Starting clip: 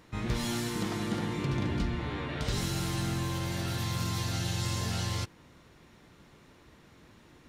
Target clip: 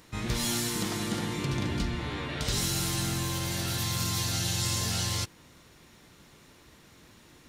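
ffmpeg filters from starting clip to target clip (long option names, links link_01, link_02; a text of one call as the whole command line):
ffmpeg -i in.wav -af "highshelf=frequency=3700:gain=11" out.wav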